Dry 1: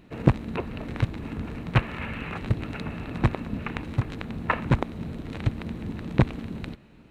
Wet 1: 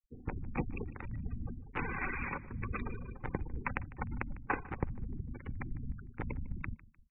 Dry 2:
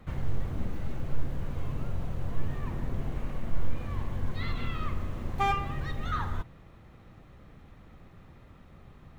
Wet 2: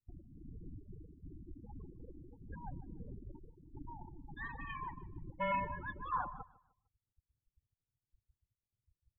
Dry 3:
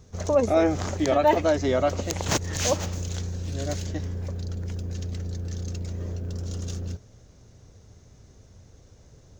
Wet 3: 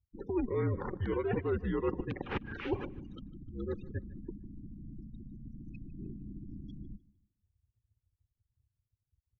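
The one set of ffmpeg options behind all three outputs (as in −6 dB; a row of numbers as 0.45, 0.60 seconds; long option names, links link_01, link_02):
-af "afftfilt=real='re*gte(hypot(re,im),0.0251)':imag='im*gte(hypot(re,im),0.0251)':win_size=1024:overlap=0.75,areverse,acompressor=threshold=-32dB:ratio=12,areverse,asuperstop=centerf=860:order=4:qfactor=5.1,aecho=1:1:151|302|453:0.1|0.032|0.0102,highpass=frequency=230:width_type=q:width=0.5412,highpass=frequency=230:width_type=q:width=1.307,lowpass=frequency=3000:width_type=q:width=0.5176,lowpass=frequency=3000:width_type=q:width=0.7071,lowpass=frequency=3000:width_type=q:width=1.932,afreqshift=-210,volume=4dB"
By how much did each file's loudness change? −11.5, −9.0, −10.5 LU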